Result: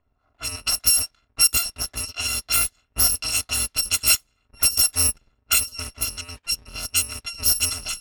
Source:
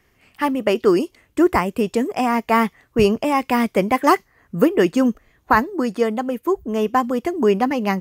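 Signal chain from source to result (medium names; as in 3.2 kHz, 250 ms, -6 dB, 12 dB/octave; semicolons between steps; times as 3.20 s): bit-reversed sample order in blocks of 256 samples; level-controlled noise filter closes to 1.1 kHz, open at -12.5 dBFS; trim -2 dB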